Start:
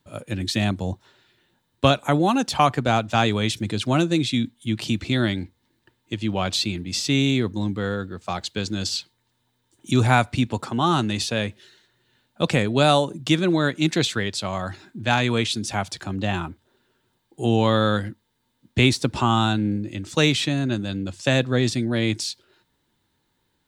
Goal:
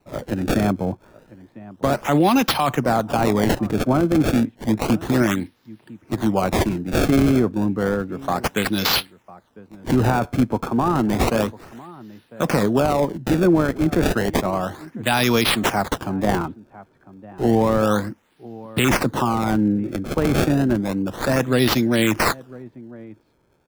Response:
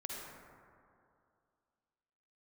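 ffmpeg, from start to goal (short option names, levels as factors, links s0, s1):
-filter_complex "[0:a]highpass=150,equalizer=f=10000:w=1.1:g=14,alimiter=limit=0.2:level=0:latency=1:release=14,acrossover=split=1600[s0][s1];[s0]aecho=1:1:1002:0.106[s2];[s1]acrusher=samples=26:mix=1:aa=0.000001:lfo=1:lforange=41.6:lforate=0.31[s3];[s2][s3]amix=inputs=2:normalize=0,volume=2"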